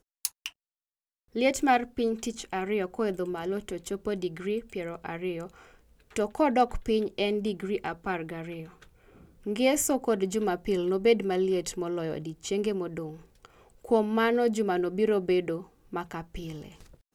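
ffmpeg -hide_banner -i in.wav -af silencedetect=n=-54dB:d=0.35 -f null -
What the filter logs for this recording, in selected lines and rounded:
silence_start: 0.52
silence_end: 1.33 | silence_duration: 0.81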